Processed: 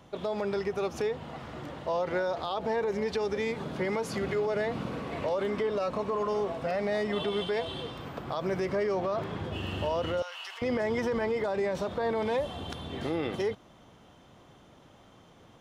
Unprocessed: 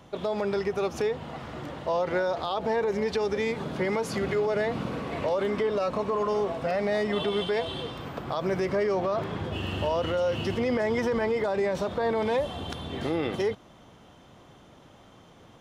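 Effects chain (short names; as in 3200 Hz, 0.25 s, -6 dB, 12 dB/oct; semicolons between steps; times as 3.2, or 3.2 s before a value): 10.22–10.62 HPF 930 Hz 24 dB/oct; gain -3 dB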